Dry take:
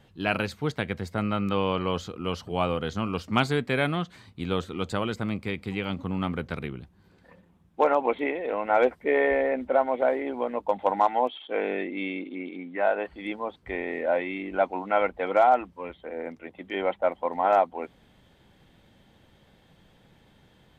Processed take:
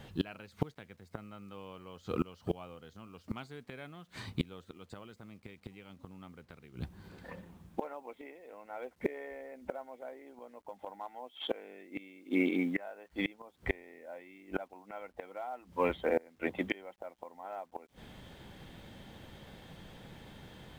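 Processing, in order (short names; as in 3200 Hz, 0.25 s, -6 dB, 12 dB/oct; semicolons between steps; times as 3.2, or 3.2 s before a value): flipped gate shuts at -24 dBFS, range -29 dB; companded quantiser 8-bit; gain +7 dB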